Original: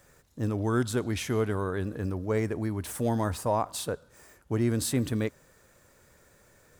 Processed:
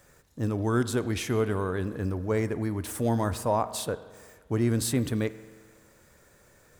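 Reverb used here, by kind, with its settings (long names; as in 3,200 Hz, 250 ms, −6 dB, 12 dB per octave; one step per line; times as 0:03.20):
spring reverb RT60 1.6 s, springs 43 ms, chirp 75 ms, DRR 14.5 dB
level +1 dB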